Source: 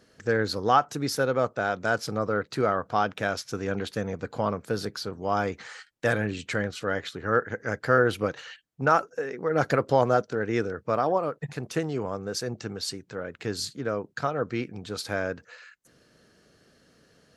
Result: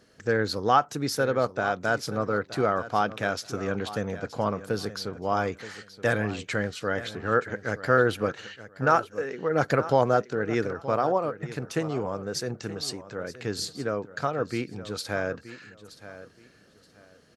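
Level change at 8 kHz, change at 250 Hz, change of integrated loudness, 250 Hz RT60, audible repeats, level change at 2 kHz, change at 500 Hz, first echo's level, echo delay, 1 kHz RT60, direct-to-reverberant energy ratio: 0.0 dB, 0.0 dB, 0.0 dB, none, 2, 0.0 dB, 0.0 dB, -15.0 dB, 0.924 s, none, none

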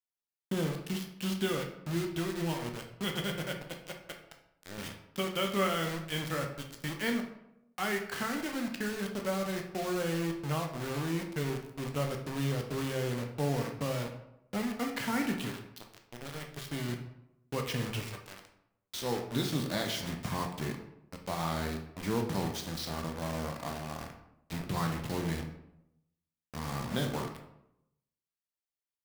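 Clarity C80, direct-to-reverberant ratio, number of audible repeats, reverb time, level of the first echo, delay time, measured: 10.5 dB, 2.5 dB, none, 0.85 s, none, none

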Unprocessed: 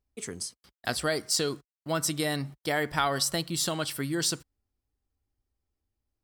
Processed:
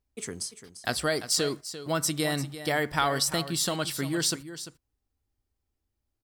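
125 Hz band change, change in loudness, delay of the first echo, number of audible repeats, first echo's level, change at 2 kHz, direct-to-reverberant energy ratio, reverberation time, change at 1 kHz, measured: +1.5 dB, +1.0 dB, 0.345 s, 1, -12.5 dB, +1.0 dB, none, none, +1.0 dB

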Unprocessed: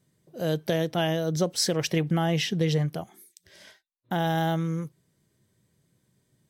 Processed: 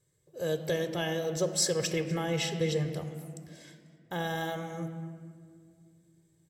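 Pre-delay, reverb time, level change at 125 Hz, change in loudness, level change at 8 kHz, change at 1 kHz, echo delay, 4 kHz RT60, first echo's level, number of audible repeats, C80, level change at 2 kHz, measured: 3 ms, 2.2 s, -7.5 dB, -5.0 dB, +0.5 dB, -7.5 dB, 0.246 s, 1.1 s, -18.5 dB, 2, 10.0 dB, -3.0 dB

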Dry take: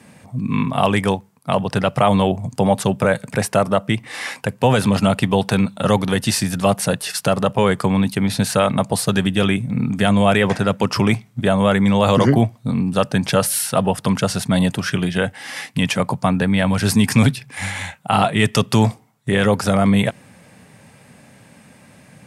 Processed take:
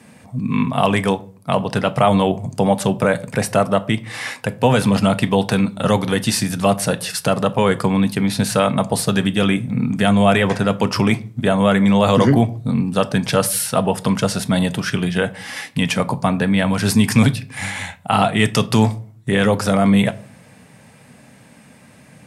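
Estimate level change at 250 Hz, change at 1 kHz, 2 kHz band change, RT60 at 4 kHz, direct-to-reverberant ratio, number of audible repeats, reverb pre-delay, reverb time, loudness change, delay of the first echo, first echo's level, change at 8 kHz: +1.0 dB, +0.5 dB, +0.5 dB, 0.30 s, 11.5 dB, none, 4 ms, 0.45 s, +0.5 dB, none, none, 0.0 dB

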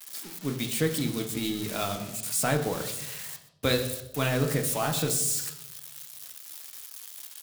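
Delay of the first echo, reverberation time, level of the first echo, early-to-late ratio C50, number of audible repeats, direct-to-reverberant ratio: 0.126 s, 0.85 s, -18.0 dB, 9.5 dB, 1, 4.0 dB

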